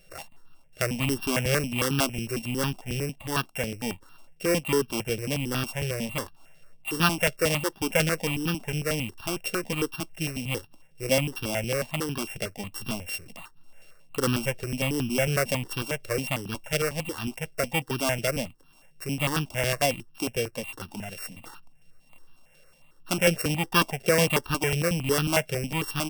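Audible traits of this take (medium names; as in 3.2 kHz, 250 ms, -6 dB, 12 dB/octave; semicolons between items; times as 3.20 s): a buzz of ramps at a fixed pitch in blocks of 16 samples; notches that jump at a steady rate 11 Hz 270–2100 Hz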